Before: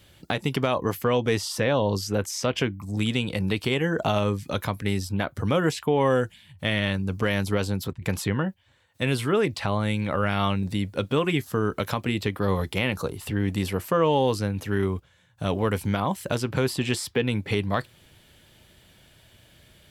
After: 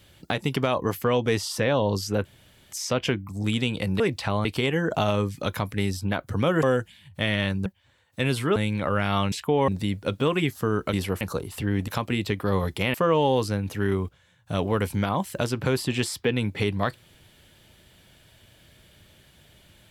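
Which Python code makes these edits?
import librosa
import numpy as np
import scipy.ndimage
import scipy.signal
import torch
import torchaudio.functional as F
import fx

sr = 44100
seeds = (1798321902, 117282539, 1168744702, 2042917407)

y = fx.edit(x, sr, fx.insert_room_tone(at_s=2.25, length_s=0.47),
    fx.move(start_s=5.71, length_s=0.36, to_s=10.59),
    fx.cut(start_s=7.1, length_s=1.38),
    fx.move(start_s=9.38, length_s=0.45, to_s=3.53),
    fx.swap(start_s=11.84, length_s=1.06, other_s=13.57, other_length_s=0.28), tone=tone)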